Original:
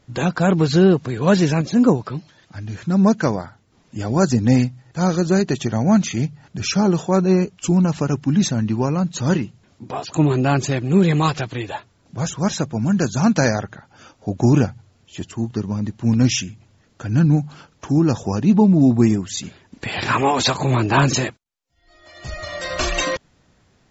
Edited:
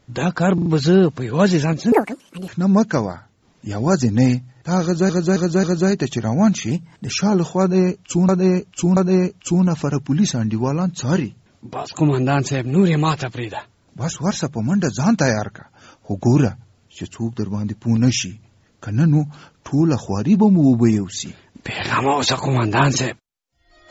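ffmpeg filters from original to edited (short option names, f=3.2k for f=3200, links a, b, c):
-filter_complex "[0:a]asplit=13[a][b][c][d][e][f][g][h][i][j][k][l][m];[a]atrim=end=0.582[n];[b]atrim=start=0.538:end=0.582[o];[c]atrim=start=0.538:end=0.582[p];[d]atrim=start=0.538:end=1.804[q];[e]atrim=start=1.8:end=2.78,asetpts=PTS-STARTPTS,asetrate=76734,aresample=44100[r];[f]atrim=start=2.776:end=5.392[s];[g]atrim=start=5.118:end=5.392[t];[h]atrim=start=5.118:end=5.392[u];[i]atrim=start=5.118:end=6.204[v];[j]atrim=start=6.2:end=6.64,asetpts=PTS-STARTPTS,asetrate=49392,aresample=44100[w];[k]atrim=start=6.636:end=7.822[x];[l]atrim=start=7.138:end=7.822[y];[m]atrim=start=7.138[z];[n][o]acrossfade=d=0.004:c1=hsin:c2=hsin[aa];[aa][p]acrossfade=d=0.004:c1=hsin:c2=hsin[ab];[ab][q]acrossfade=d=0.004:c1=hsin:c2=hsin[ac];[ac][r]acrossfade=d=0.004:c1=hsin:c2=hsin[ad];[ad][s]acrossfade=d=0.004:c1=hsin:c2=hsin[ae];[ae][t]acrossfade=d=0.004:c1=hsin:c2=hsin[af];[af][u]acrossfade=d=0.004:c1=hsin:c2=hsin[ag];[ag][v]acrossfade=d=0.004:c1=hsin:c2=hsin[ah];[ah][w]acrossfade=d=0.004:c1=hsin:c2=hsin[ai];[ai][x]acrossfade=d=0.004:c1=hsin:c2=hsin[aj];[aj][y]acrossfade=d=0.004:c1=hsin:c2=hsin[ak];[ak][z]acrossfade=d=0.004:c1=hsin:c2=hsin"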